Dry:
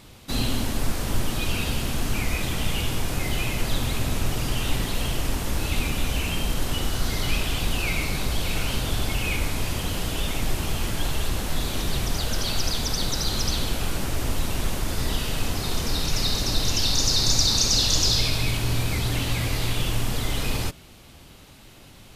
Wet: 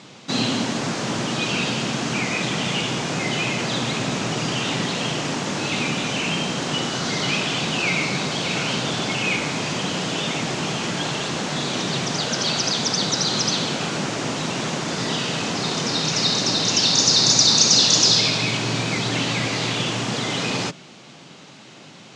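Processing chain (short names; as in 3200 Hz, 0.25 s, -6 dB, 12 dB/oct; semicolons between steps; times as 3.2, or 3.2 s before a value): elliptic band-pass 150–6800 Hz, stop band 40 dB; gain +7 dB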